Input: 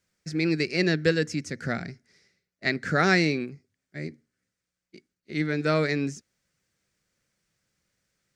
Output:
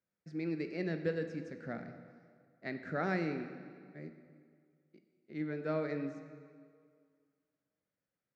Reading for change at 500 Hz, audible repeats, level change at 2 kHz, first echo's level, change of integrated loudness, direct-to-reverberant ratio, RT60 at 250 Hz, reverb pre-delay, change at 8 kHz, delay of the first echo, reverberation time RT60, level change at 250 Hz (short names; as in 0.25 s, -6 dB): -10.0 dB, none, -16.0 dB, none, -12.5 dB, 7.5 dB, 2.0 s, 18 ms, under -25 dB, none, 2.1 s, -11.0 dB